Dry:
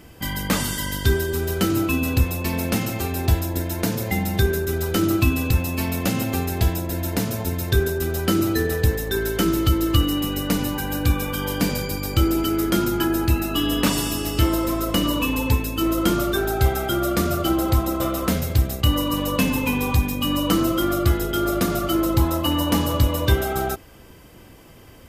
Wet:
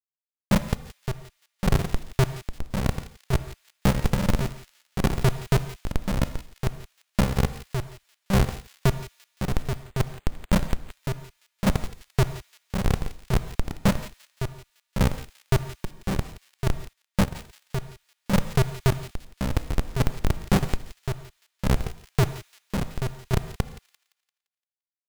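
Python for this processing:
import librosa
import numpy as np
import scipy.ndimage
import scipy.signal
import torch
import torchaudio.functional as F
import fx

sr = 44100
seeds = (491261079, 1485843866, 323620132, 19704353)

p1 = fx.chord_vocoder(x, sr, chord='bare fifth', root=48)
p2 = fx.spec_gate(p1, sr, threshold_db=-15, keep='strong')
p3 = fx.bass_treble(p2, sr, bass_db=12, treble_db=6)
p4 = fx.schmitt(p3, sr, flips_db=-11.5)
p5 = fx.chopper(p4, sr, hz=4.2, depth_pct=60, duty_pct=40)
p6 = p5 + fx.echo_wet_highpass(p5, sr, ms=172, feedback_pct=39, hz=2500.0, wet_db=-13.0, dry=0)
p7 = fx.rev_gated(p6, sr, seeds[0], gate_ms=190, shape='flat', drr_db=11.5)
p8 = fx.resample_bad(p7, sr, factor=8, down='none', up='hold', at=(9.82, 10.91))
y = fx.upward_expand(p8, sr, threshold_db=-38.0, expansion=1.5, at=(16.93, 17.35))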